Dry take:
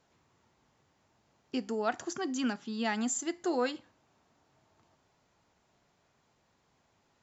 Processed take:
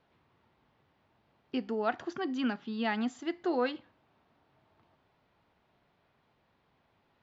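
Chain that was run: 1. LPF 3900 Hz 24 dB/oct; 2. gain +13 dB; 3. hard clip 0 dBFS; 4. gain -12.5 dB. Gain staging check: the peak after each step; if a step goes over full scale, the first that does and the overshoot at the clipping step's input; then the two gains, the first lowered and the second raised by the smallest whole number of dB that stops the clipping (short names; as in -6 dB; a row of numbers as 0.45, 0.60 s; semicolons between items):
-16.5, -3.5, -3.5, -16.0 dBFS; no overload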